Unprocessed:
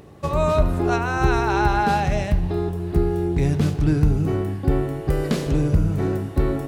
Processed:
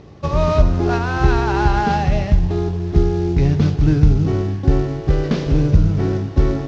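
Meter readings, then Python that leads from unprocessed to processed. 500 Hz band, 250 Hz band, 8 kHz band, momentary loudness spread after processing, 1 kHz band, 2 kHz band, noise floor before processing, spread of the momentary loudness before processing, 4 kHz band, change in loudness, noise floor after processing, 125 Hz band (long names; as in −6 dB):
+2.0 dB, +3.5 dB, can't be measured, 5 LU, +1.0 dB, +1.0 dB, −32 dBFS, 4 LU, +3.0 dB, +4.0 dB, −29 dBFS, +5.0 dB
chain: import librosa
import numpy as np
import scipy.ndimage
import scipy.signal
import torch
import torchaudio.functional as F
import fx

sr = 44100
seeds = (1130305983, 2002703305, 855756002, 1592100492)

y = fx.cvsd(x, sr, bps=32000)
y = fx.low_shelf(y, sr, hz=180.0, db=5.5)
y = y * librosa.db_to_amplitude(1.5)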